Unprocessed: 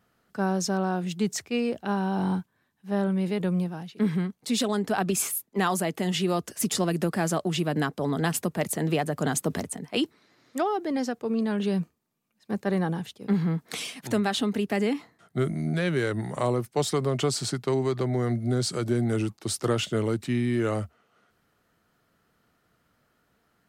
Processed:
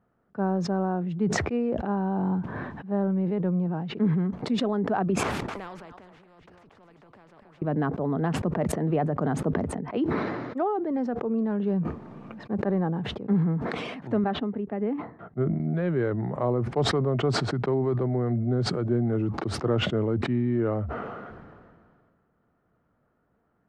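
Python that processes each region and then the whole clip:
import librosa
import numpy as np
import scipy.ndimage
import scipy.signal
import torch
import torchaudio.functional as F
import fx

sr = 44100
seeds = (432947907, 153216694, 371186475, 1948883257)

y = fx.chain(x, sr, fx.level_steps(step_db=20),
    fx.echo_single(ms=253, db=-15.5),
    fx.spectral_comp(ratio=4.0), at=(5.23, 7.62))
y = fx.chain(y, sr, fx.bessel_lowpass(hz=2400.0, order=2),
    fx.upward_expand(threshold_db=-37.0, expansion=2.5), at=(14.24, 15.6))
y = scipy.signal.sosfilt(scipy.signal.butter(2, 1100.0, 'lowpass', fs=sr, output='sos'), y)
y = fx.sustainer(y, sr, db_per_s=29.0)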